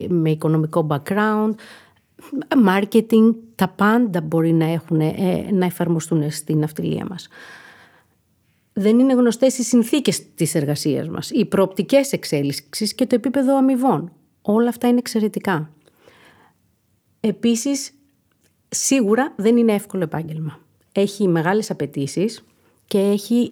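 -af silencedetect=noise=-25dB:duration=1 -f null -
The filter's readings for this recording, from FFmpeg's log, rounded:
silence_start: 7.19
silence_end: 8.77 | silence_duration: 1.58
silence_start: 15.64
silence_end: 17.24 | silence_duration: 1.60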